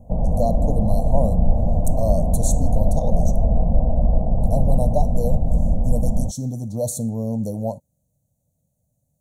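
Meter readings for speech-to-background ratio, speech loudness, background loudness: −4.5 dB, −27.0 LKFS, −22.5 LKFS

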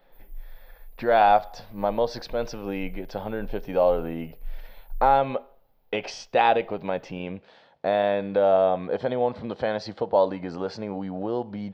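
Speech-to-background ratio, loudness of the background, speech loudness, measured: 23.5 dB, −49.0 LKFS, −25.5 LKFS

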